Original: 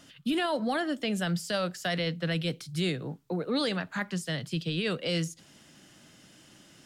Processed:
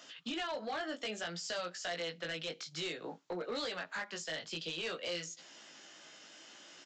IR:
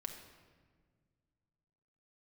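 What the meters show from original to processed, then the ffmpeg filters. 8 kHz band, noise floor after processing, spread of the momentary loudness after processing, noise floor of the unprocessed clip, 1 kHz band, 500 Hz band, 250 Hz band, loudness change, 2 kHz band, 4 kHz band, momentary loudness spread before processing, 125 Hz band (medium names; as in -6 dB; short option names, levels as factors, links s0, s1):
-3.0 dB, -60 dBFS, 15 LU, -57 dBFS, -7.0 dB, -8.0 dB, -15.0 dB, -8.5 dB, -6.0 dB, -5.5 dB, 5 LU, -20.5 dB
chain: -af "highpass=490,acompressor=threshold=0.01:ratio=3,flanger=delay=17:depth=2.1:speed=0.58,aresample=16000,asoftclip=type=hard:threshold=0.0106,aresample=44100,volume=2"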